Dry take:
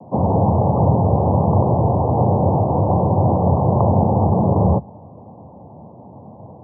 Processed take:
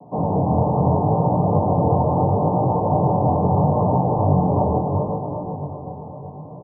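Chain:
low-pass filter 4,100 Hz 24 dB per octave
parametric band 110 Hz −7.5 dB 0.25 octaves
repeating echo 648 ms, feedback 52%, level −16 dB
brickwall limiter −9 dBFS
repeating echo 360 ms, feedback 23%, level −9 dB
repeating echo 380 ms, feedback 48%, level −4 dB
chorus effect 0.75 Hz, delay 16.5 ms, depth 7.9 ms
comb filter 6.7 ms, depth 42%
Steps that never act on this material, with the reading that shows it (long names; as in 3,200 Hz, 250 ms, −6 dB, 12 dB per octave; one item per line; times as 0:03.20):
low-pass filter 4,100 Hz: nothing at its input above 1,100 Hz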